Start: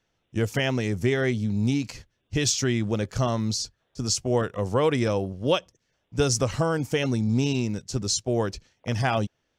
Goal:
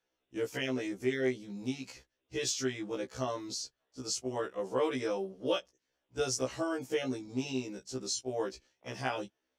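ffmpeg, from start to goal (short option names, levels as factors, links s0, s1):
-af "lowshelf=f=220:t=q:w=1.5:g=-9.5,afftfilt=real='re*1.73*eq(mod(b,3),0)':imag='im*1.73*eq(mod(b,3),0)':win_size=2048:overlap=0.75,volume=0.473"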